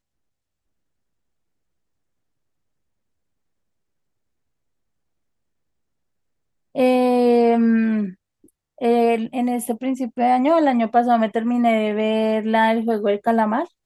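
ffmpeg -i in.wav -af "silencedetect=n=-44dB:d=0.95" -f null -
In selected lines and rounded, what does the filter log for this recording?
silence_start: 0.00
silence_end: 6.75 | silence_duration: 6.75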